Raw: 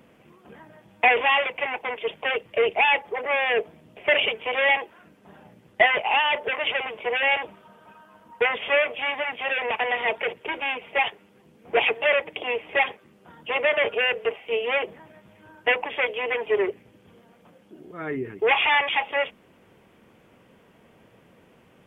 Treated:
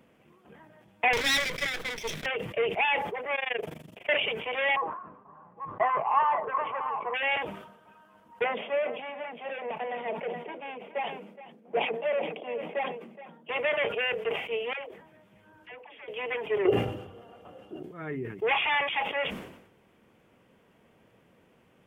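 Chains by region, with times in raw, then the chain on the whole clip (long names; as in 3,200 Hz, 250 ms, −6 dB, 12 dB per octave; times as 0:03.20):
0:01.13–0:02.26: lower of the sound and its delayed copy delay 0.52 ms + high-shelf EQ 2,600 Hz +9.5 dB
0:03.35–0:04.09: high-shelf EQ 3,300 Hz +8.5 dB + upward compression, threshold −30 dBFS + amplitude modulation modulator 24 Hz, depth 95%
0:04.76–0:07.14: delay that plays each chunk backwards 447 ms, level −9.5 dB + low-pass with resonance 1,100 Hz, resonance Q 13 + flanger 1.3 Hz, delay 5.5 ms, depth 2.6 ms, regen +62%
0:08.44–0:13.49: Chebyshev high-pass with heavy ripple 160 Hz, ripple 6 dB + tilt shelving filter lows +6 dB, about 730 Hz + single-tap delay 420 ms −16 dB
0:14.73–0:16.08: downward compressor 2.5 to 1, threshold −46 dBFS + all-pass dispersion lows, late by 85 ms, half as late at 540 Hz
0:16.65–0:17.83: parametric band 94 Hz +14 dB 1.5 octaves + comb filter 2.9 ms, depth 44% + hollow resonant body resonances 540/780/1,200/2,800 Hz, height 16 dB, ringing for 20 ms
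whole clip: dynamic equaliser 150 Hz, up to +7 dB, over −53 dBFS, Q 2.2; level that may fall only so fast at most 70 dB per second; level −6.5 dB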